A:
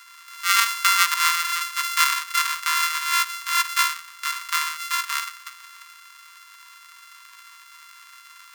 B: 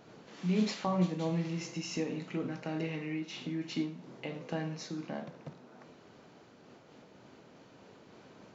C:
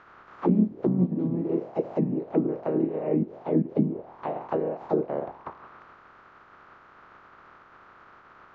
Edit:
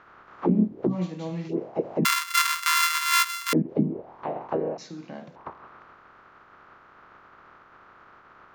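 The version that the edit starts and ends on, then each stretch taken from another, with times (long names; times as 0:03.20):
C
0:00.93–0:01.52: punch in from B, crossfade 0.10 s
0:02.05–0:03.53: punch in from A
0:04.78–0:05.36: punch in from B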